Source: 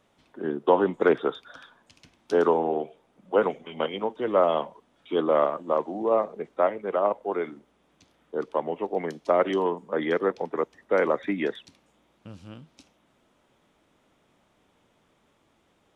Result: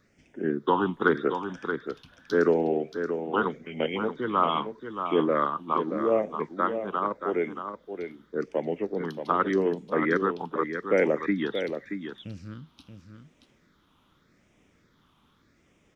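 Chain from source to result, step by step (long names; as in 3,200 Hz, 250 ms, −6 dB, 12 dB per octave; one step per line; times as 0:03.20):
all-pass phaser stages 6, 0.84 Hz, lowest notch 540–1,100 Hz
single-tap delay 628 ms −8 dB
level +4 dB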